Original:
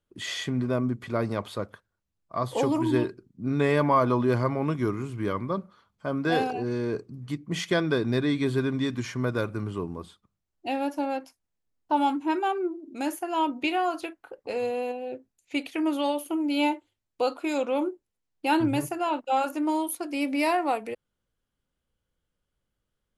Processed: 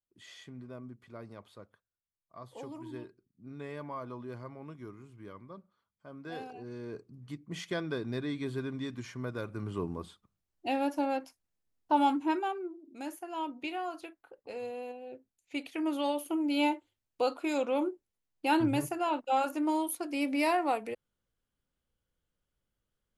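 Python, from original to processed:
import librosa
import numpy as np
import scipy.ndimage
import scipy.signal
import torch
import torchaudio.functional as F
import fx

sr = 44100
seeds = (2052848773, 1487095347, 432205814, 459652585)

y = fx.gain(x, sr, db=fx.line((6.1, -19.0), (7.22, -10.0), (9.41, -10.0), (9.85, -2.0), (12.24, -2.0), (12.64, -10.5), (15.03, -10.5), (16.26, -3.5)))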